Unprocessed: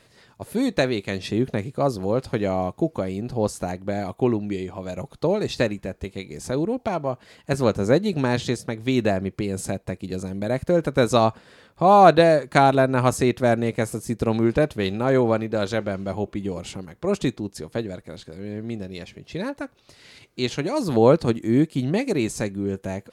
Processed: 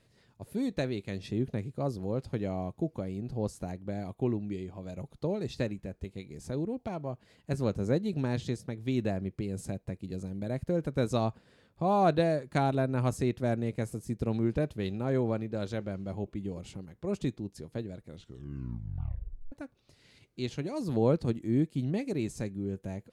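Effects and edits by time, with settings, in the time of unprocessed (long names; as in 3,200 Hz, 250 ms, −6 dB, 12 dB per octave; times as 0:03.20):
0:18.07: tape stop 1.45 s
whole clip: drawn EQ curve 130 Hz 0 dB, 1,200 Hz −10 dB, 2,400 Hz −8 dB; level −5.5 dB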